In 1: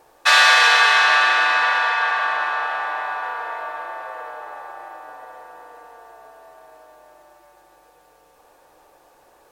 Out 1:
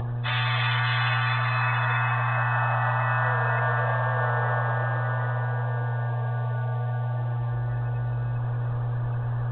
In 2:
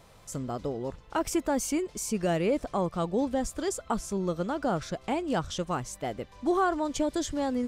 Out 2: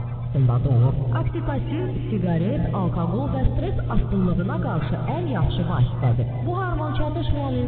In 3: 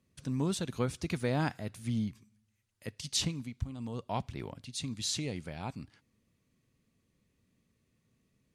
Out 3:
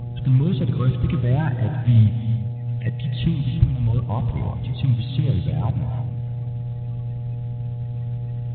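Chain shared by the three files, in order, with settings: bin magnitudes rounded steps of 30 dB; de-hum 75.04 Hz, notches 6; dynamic EQ 340 Hz, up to +3 dB, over -40 dBFS, Q 2.3; reverse; compressor 6:1, threshold -27 dBFS; reverse; limiter -25.5 dBFS; upward compressor, threshold -41 dBFS; buzz 120 Hz, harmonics 7, -49 dBFS -4 dB/oct; resonant low shelf 200 Hz +13 dB, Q 1.5; on a send: analogue delay 0.401 s, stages 2048, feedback 57%, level -18 dB; on the sum: non-linear reverb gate 0.37 s rising, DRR 6.5 dB; gain +7 dB; A-law 64 kbps 8000 Hz

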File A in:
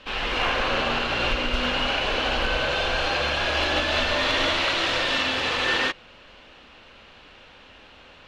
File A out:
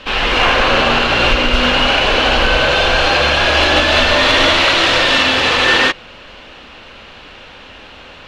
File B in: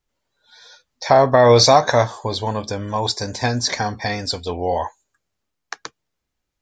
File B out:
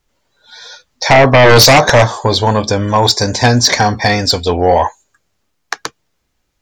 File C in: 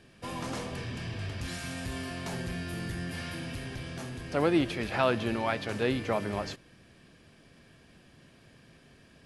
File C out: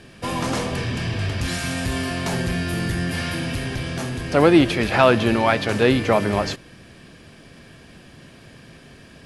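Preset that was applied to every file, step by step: sine folder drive 9 dB, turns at -1 dBFS; gain -1 dB

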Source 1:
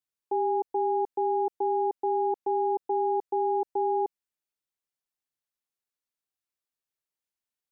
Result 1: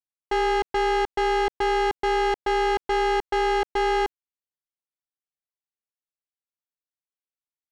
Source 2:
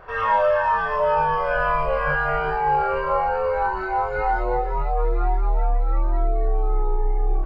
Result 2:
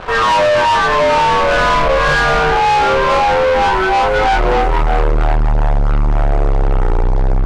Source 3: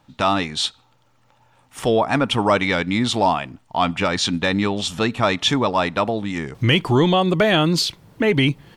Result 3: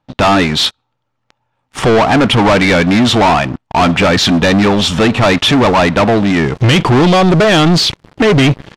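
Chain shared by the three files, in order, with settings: high shelf 4200 Hz -3.5 dB; sample leveller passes 5; air absorption 62 m

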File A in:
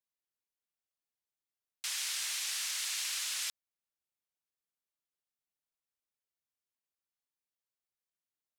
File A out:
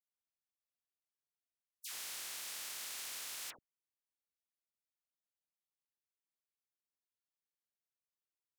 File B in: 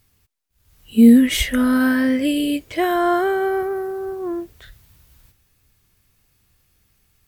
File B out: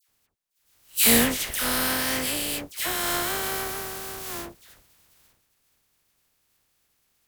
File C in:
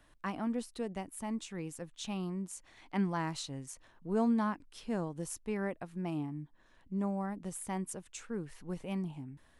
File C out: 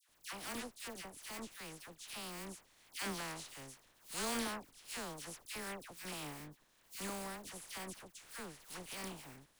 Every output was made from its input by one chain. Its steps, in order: spectral contrast lowered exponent 0.33; dispersion lows, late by 88 ms, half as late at 1500 Hz; gain -8.5 dB

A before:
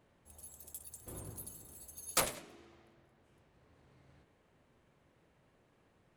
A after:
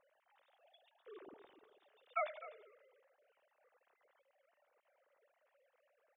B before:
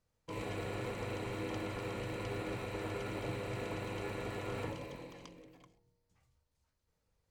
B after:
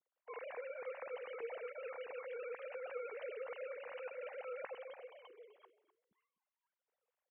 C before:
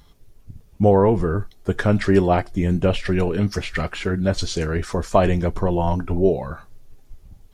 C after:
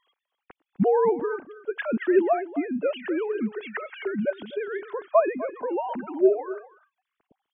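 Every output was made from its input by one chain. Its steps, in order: sine-wave speech; on a send: echo 0.253 s -15.5 dB; on the sum: gain -6 dB

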